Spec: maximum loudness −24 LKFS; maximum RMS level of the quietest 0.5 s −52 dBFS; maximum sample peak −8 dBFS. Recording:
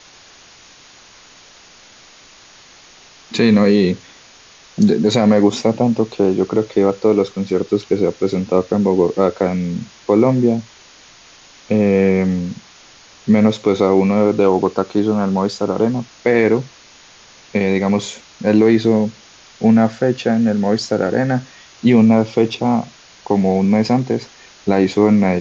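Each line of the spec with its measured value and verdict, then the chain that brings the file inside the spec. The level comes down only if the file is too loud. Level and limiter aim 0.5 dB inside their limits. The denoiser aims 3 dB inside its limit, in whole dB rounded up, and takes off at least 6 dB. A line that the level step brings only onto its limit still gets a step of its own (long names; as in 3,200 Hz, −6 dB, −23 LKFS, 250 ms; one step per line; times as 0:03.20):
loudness −16.0 LKFS: out of spec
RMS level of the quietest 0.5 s −45 dBFS: out of spec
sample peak −3.0 dBFS: out of spec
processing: level −8.5 dB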